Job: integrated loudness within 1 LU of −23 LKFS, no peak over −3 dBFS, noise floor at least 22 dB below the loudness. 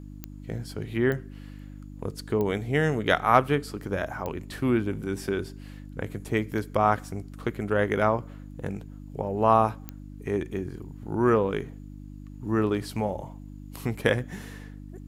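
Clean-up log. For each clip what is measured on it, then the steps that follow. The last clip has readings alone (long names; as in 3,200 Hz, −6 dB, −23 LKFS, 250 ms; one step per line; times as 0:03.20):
number of clicks 5; mains hum 50 Hz; hum harmonics up to 300 Hz; level of the hum −40 dBFS; integrated loudness −27.5 LKFS; sample peak −5.0 dBFS; target loudness −23.0 LKFS
→ click removal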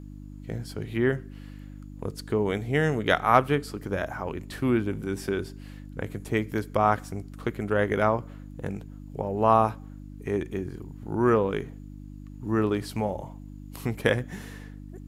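number of clicks 0; mains hum 50 Hz; hum harmonics up to 300 Hz; level of the hum −40 dBFS
→ hum removal 50 Hz, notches 6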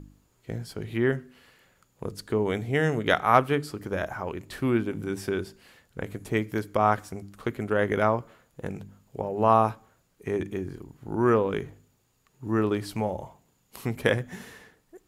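mains hum none found; integrated loudness −27.5 LKFS; sample peak −5.0 dBFS; target loudness −23.0 LKFS
→ level +4.5 dB
brickwall limiter −3 dBFS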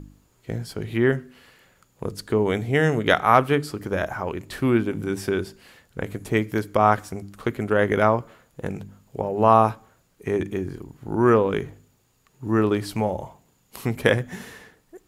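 integrated loudness −23.0 LKFS; sample peak −3.0 dBFS; background noise floor −64 dBFS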